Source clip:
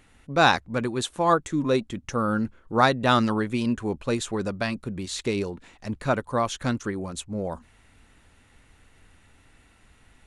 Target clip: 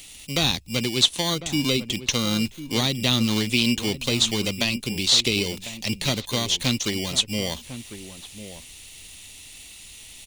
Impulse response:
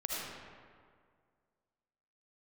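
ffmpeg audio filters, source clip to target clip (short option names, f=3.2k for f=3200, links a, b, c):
-filter_complex "[0:a]asplit=2[a][b];[b]acrusher=samples=17:mix=1:aa=0.000001,volume=-3.5dB[c];[a][c]amix=inputs=2:normalize=0,acrossover=split=290[d][e];[e]acompressor=threshold=-26dB:ratio=10[f];[d][f]amix=inputs=2:normalize=0,aexciter=amount=10.1:drive=7.3:freq=2.3k,acrossover=split=4800[g][h];[h]acompressor=threshold=-32dB:ratio=4:attack=1:release=60[i];[g][i]amix=inputs=2:normalize=0,asplit=2[j][k];[k]adelay=1050,volume=-12dB,highshelf=f=4k:g=-23.6[l];[j][l]amix=inputs=2:normalize=0,volume=-2dB"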